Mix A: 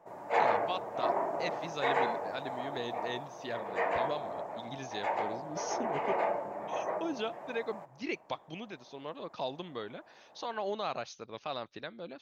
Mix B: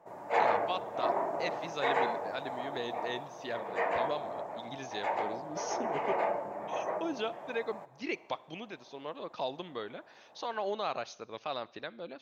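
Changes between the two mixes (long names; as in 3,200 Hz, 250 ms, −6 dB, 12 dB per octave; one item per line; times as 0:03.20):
speech: add bass and treble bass −5 dB, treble −2 dB
reverb: on, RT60 0.90 s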